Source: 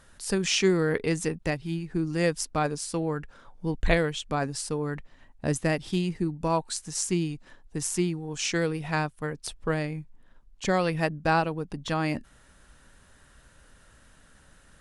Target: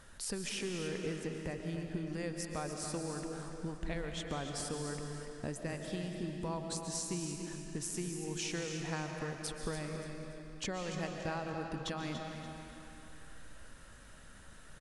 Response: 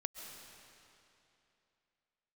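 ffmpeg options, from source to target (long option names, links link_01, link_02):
-filter_complex "[0:a]asettb=1/sr,asplit=3[link_01][link_02][link_03];[link_01]atrim=end=0.494[link_04];[link_02]atrim=start=0.49:end=1.6,asetpts=PTS-STARTPTS,afade=type=in:duration=0.004:curve=qsin,afade=type=out:start_time=1.106:duration=0.004:curve=qsin,equalizer=frequency=8100:width_type=o:width=2.8:gain=-8.5[link_05];[link_03]atrim=start=1.596[link_06];[link_04][link_05]acrossfade=duration=0.004:curve1=hsin:curve2=qsin[link_07];[link_07][link_06]acrossfade=duration=0.004:curve1=qsin:curve2=hsin,acompressor=threshold=-37dB:ratio=6,aecho=1:1:287|574|861|1148:0.316|0.12|0.0457|0.0174[link_08];[1:a]atrim=start_sample=2205[link_09];[link_08][link_09]afir=irnorm=-1:irlink=0,volume=2dB"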